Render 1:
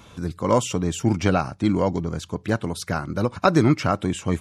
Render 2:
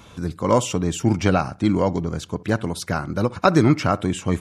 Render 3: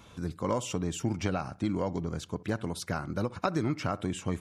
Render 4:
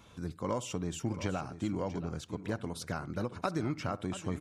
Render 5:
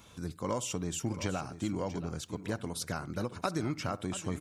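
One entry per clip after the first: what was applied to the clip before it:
bucket-brigade echo 64 ms, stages 1024, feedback 32%, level -21.5 dB; trim +1.5 dB
compression 5:1, threshold -18 dBFS, peak gain reduction 8 dB; trim -7.5 dB
delay 681 ms -13 dB; trim -4 dB
treble shelf 4.7 kHz +9 dB

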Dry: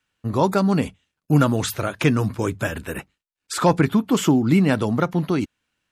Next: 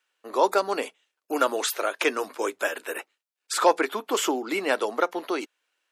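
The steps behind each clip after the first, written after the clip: inverse Chebyshev high-pass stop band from 150 Hz, stop band 50 dB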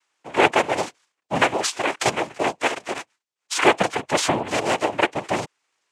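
noise-vocoded speech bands 4; trim +4 dB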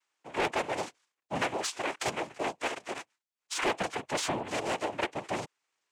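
saturation -14.5 dBFS, distortion -11 dB; trim -8.5 dB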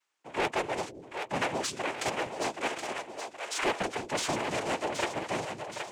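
two-band feedback delay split 410 Hz, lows 185 ms, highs 773 ms, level -6.5 dB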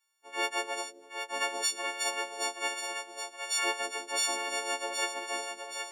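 partials quantised in pitch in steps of 4 st; high-pass 330 Hz 24 dB/octave; trim -6.5 dB

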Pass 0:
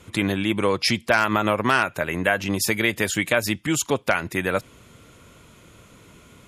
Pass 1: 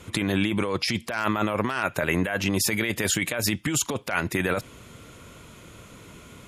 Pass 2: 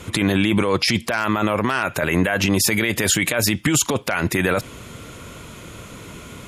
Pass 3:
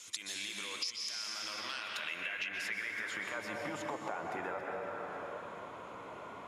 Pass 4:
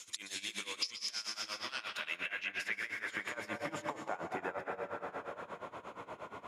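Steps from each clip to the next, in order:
compressor with a negative ratio -25 dBFS, ratio -1
peak limiter -16 dBFS, peak gain reduction 8.5 dB; trim +8.5 dB
plate-style reverb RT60 2.6 s, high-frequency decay 0.8×, pre-delay 110 ms, DRR 1 dB; band-pass sweep 6.1 kHz -> 840 Hz, 1.37–3.67 s; compression 5:1, threshold -37 dBFS, peak gain reduction 15 dB
tremolo 8.5 Hz, depth 87%; trim +3 dB

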